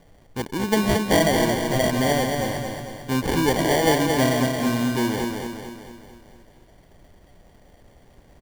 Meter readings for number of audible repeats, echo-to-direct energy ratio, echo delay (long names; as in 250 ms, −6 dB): 6, −3.0 dB, 224 ms